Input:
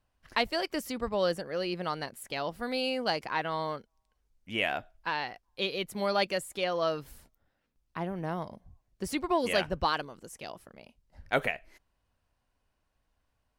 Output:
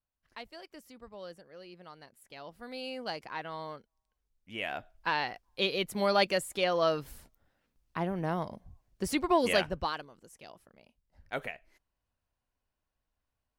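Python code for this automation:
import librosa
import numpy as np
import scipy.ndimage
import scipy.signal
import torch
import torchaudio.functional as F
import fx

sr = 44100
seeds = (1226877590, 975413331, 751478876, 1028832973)

y = fx.gain(x, sr, db=fx.line((1.96, -17.0), (2.98, -7.5), (4.59, -7.5), (5.07, 2.0), (9.5, 2.0), (10.05, -8.5)))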